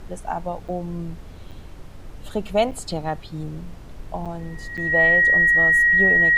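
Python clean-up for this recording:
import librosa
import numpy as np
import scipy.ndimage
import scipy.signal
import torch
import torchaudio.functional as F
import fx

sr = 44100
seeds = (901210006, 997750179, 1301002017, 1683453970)

y = fx.notch(x, sr, hz=1900.0, q=30.0)
y = fx.fix_interpolate(y, sr, at_s=(0.68, 1.51, 2.71, 4.25, 4.77), length_ms=6.7)
y = fx.noise_reduce(y, sr, print_start_s=1.44, print_end_s=1.94, reduce_db=27.0)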